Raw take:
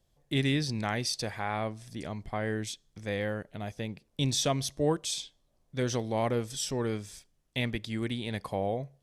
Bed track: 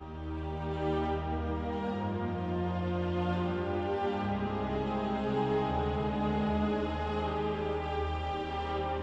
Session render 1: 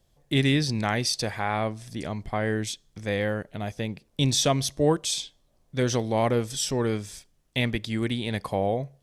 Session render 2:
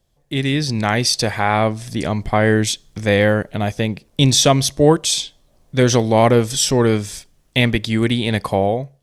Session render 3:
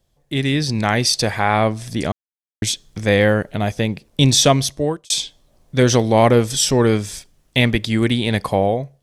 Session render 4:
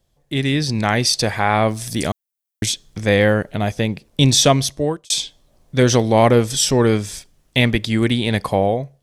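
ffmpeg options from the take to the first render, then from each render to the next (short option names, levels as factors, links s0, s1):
-af "volume=1.88"
-af "dynaudnorm=f=260:g=5:m=4.47"
-filter_complex "[0:a]asplit=4[s0][s1][s2][s3];[s0]atrim=end=2.12,asetpts=PTS-STARTPTS,afade=t=out:st=2.116:d=0.004:c=hsin[s4];[s1]atrim=start=2.12:end=2.62,asetpts=PTS-STARTPTS,volume=0[s5];[s2]atrim=start=2.62:end=5.1,asetpts=PTS-STARTPTS,afade=t=in:d=0.004:c=hsin,afade=t=out:st=1.88:d=0.6[s6];[s3]atrim=start=5.1,asetpts=PTS-STARTPTS,afade=t=in:d=0.004:c=hsin[s7];[s4][s5][s6][s7]concat=n=4:v=0:a=1"
-filter_complex "[0:a]asettb=1/sr,asplit=3[s0][s1][s2];[s0]atrim=end=1.684[s3];[s1]atrim=start=1.68:end=2.66,asetpts=PTS-STARTPTS,afade=t=in:d=0.004:c=qsin,afade=t=out:st=0.976:d=0.004:c=qsin,aemphasis=mode=production:type=50kf[s4];[s2]atrim=start=2.656[s5];[s3][s4]acrossfade=d=0.004:c1=hsin:c2=qsin[s6];[s6][s5]acrossfade=d=0.004:c1=qsin:c2=hsin"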